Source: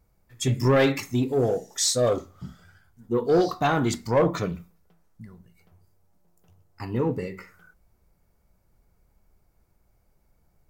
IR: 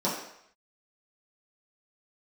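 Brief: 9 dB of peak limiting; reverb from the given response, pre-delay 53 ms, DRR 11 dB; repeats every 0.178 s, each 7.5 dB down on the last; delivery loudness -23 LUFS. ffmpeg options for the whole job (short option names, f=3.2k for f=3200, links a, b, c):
-filter_complex "[0:a]alimiter=limit=-22.5dB:level=0:latency=1,aecho=1:1:178|356|534|712|890:0.422|0.177|0.0744|0.0312|0.0131,asplit=2[a][b];[1:a]atrim=start_sample=2205,adelay=53[c];[b][c]afir=irnorm=-1:irlink=0,volume=-22dB[d];[a][d]amix=inputs=2:normalize=0,volume=7.5dB"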